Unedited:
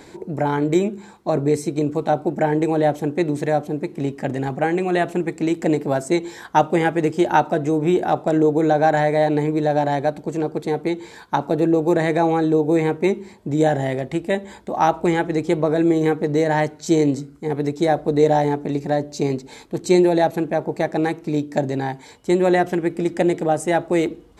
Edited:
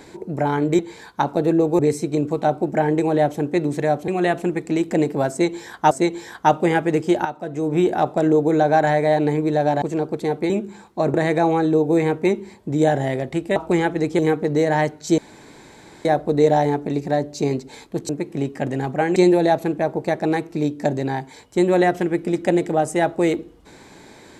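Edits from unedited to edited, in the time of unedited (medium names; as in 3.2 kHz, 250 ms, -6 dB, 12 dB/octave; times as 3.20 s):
0.79–1.43 s: swap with 10.93–11.93 s
3.72–4.79 s: move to 19.88 s
6.01–6.62 s: loop, 2 plays
7.35–7.85 s: fade in quadratic, from -13 dB
9.92–10.25 s: delete
14.35–14.90 s: delete
15.53–15.98 s: delete
16.97–17.84 s: room tone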